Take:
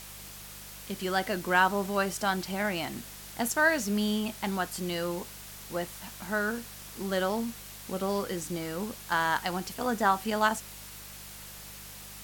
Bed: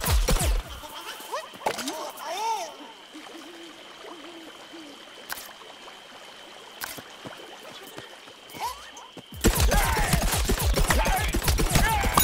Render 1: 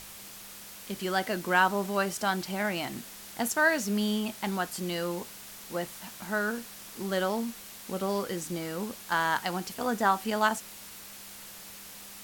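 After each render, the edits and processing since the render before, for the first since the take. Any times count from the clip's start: de-hum 50 Hz, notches 3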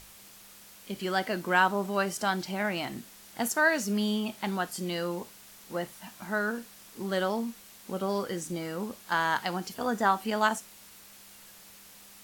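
noise print and reduce 6 dB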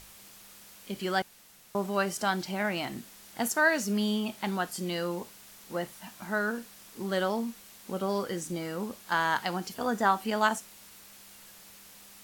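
1.22–1.75 room tone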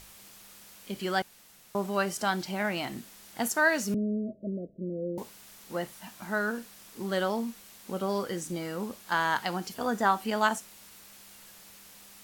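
3.94–5.18 Chebyshev low-pass 650 Hz, order 10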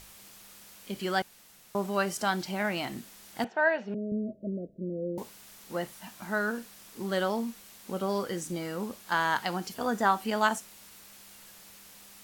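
3.44–4.12 speaker cabinet 240–2800 Hz, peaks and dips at 280 Hz -10 dB, 760 Hz +7 dB, 1200 Hz -9 dB, 2100 Hz -5 dB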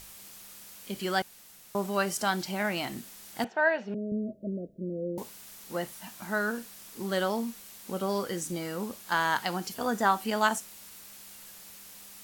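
high shelf 5500 Hz +5 dB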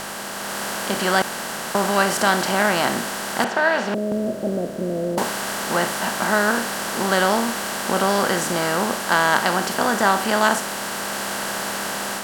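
per-bin compression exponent 0.4; AGC gain up to 5 dB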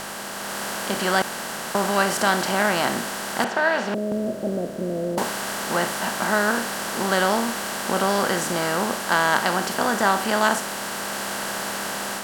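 gain -2 dB

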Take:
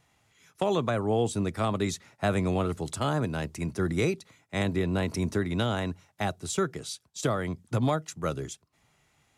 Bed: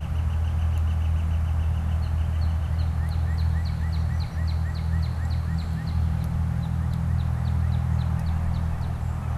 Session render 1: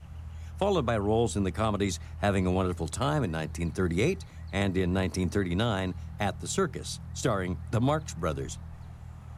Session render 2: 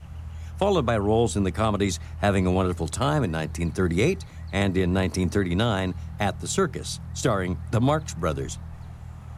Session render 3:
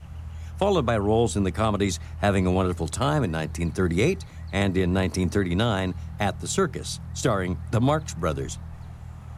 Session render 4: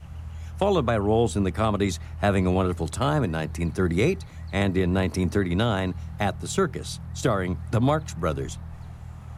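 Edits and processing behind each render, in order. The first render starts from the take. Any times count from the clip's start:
add bed -16.5 dB
gain +4.5 dB
nothing audible
dynamic EQ 6700 Hz, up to -4 dB, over -47 dBFS, Q 0.78

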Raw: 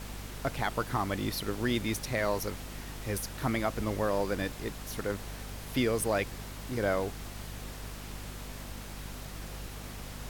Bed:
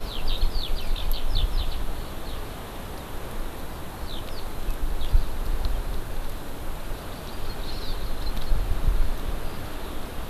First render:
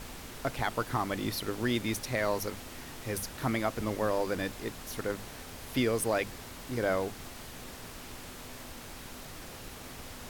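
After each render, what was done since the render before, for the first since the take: notches 50/100/150/200 Hz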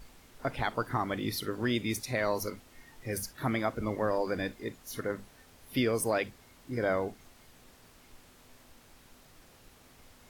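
noise print and reduce 13 dB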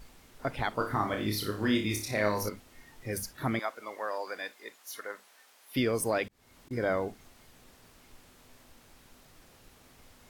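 0.76–2.49 flutter echo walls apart 4.9 m, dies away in 0.36 s; 3.59–5.76 HPF 740 Hz; 6.28–6.71 auto swell 0.291 s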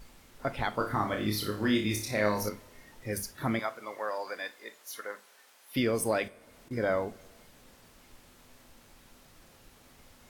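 two-slope reverb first 0.27 s, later 2.2 s, from -22 dB, DRR 11 dB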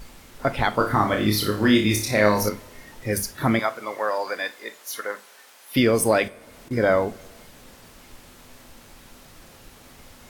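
gain +9.5 dB

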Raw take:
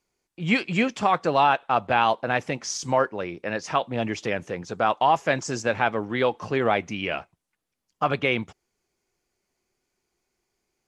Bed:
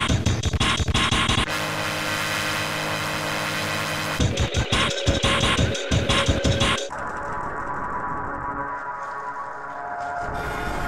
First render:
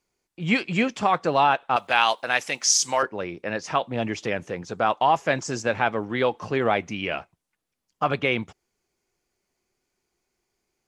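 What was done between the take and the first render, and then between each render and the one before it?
1.76–3.03 tilt +4.5 dB/oct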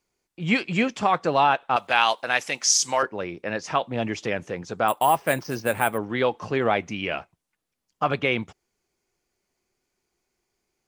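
4.88–5.98 careless resampling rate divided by 4×, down filtered, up hold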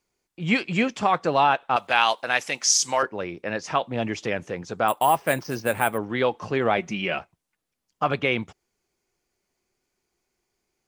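6.77–7.19 comb 5.4 ms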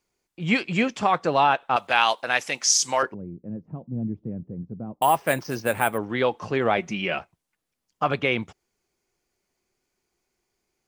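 3.14–5.02 synth low-pass 200 Hz, resonance Q 1.5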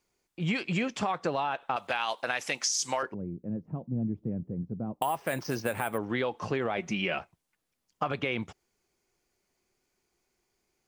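limiter -13 dBFS, peak gain reduction 8 dB; compressor, threshold -26 dBFS, peak gain reduction 8.5 dB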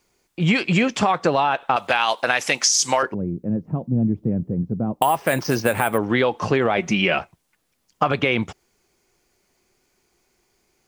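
gain +11 dB

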